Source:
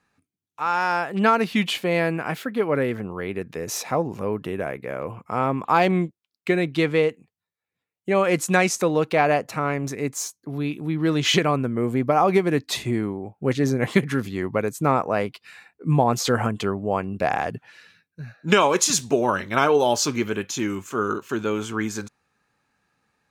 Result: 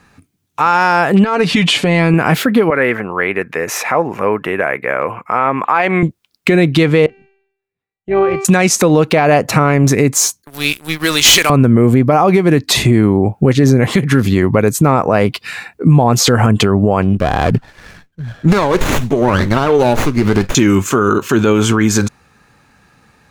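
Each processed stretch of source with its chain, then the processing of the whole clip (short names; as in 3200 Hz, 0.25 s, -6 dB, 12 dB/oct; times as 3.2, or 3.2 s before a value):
1.24–2.14 LPF 9700 Hz 24 dB/oct + comb 6.9 ms, depth 49% + compressor 8:1, threshold -27 dBFS
2.7–6.03 HPF 1200 Hz 6 dB/oct + resonant high shelf 2900 Hz -10.5 dB, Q 1.5
7.06–8.45 AM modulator 250 Hz, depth 30% + air absorption 190 m + resonator 390 Hz, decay 0.77 s, mix 90%
10.42–11.5 differentiator + sample leveller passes 3
17.02–20.55 tremolo 2.1 Hz, depth 79% + compressor, threshold -27 dBFS + running maximum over 9 samples
whole clip: low shelf 160 Hz +8 dB; compressor 10:1, threshold -23 dBFS; maximiser +20 dB; gain -1 dB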